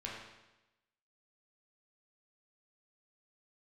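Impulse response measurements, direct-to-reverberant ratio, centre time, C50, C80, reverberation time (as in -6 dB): -4.5 dB, 62 ms, 1.0 dB, 3.5 dB, 1.0 s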